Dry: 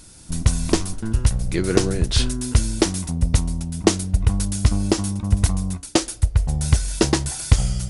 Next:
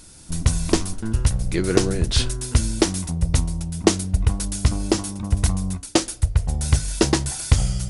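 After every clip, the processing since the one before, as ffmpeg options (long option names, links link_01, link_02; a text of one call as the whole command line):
ffmpeg -i in.wav -af "bandreject=frequency=50:width_type=h:width=6,bandreject=frequency=100:width_type=h:width=6,bandreject=frequency=150:width_type=h:width=6,bandreject=frequency=200:width_type=h:width=6,bandreject=frequency=250:width_type=h:width=6" out.wav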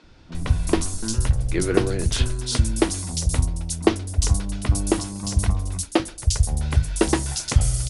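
ffmpeg -i in.wav -filter_complex "[0:a]acrossover=split=180|3900[link_01][link_02][link_03];[link_01]adelay=40[link_04];[link_03]adelay=350[link_05];[link_04][link_02][link_05]amix=inputs=3:normalize=0" out.wav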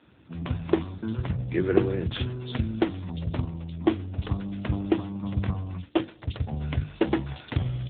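ffmpeg -i in.wav -af "volume=-1dB" -ar 8000 -c:a libopencore_amrnb -b:a 7400 out.amr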